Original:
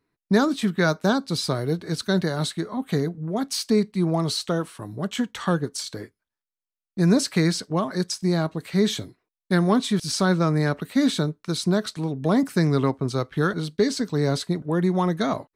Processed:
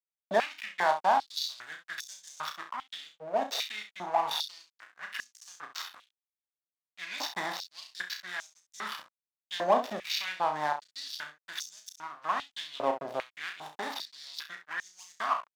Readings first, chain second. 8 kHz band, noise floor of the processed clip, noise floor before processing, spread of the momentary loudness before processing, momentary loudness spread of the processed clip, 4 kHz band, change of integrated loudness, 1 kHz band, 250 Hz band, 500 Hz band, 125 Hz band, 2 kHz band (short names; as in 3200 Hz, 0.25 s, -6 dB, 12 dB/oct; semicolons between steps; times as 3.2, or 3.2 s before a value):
-11.0 dB, under -85 dBFS, under -85 dBFS, 7 LU, 15 LU, -6.0 dB, -10.0 dB, 0.0 dB, -26.0 dB, -10.0 dB, -33.0 dB, -4.5 dB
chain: nonlinear frequency compression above 2600 Hz 1.5:1; comb 1.1 ms, depth 74%; in parallel at -2 dB: compressor 6:1, threshold -26 dBFS, peak gain reduction 12.5 dB; on the sum: backlash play -17.5 dBFS; early reflections 33 ms -7 dB, 66 ms -10.5 dB; stepped high-pass 2.5 Hz 600–6300 Hz; gain -7.5 dB